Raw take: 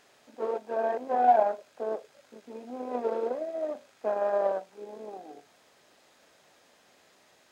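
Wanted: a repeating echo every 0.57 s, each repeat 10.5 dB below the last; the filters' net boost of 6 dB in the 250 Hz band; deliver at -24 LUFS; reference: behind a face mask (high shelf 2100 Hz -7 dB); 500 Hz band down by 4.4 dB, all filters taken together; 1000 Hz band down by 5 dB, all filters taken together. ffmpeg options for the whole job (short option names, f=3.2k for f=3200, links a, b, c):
-af "equalizer=f=250:t=o:g=8,equalizer=f=500:t=o:g=-5,equalizer=f=1k:t=o:g=-4.5,highshelf=f=2.1k:g=-7,aecho=1:1:570|1140|1710:0.299|0.0896|0.0269,volume=10dB"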